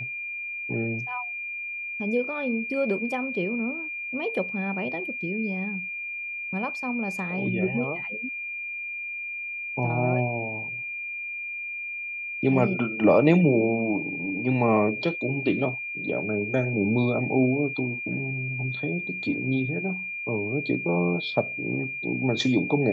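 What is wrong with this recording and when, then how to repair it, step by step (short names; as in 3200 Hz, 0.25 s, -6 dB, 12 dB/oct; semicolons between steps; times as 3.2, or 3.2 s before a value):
tone 2400 Hz -31 dBFS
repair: notch 2400 Hz, Q 30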